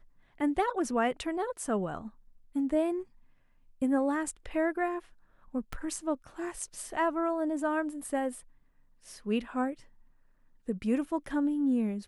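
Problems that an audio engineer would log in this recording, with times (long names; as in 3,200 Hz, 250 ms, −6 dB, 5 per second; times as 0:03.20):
0:05.73: click −23 dBFS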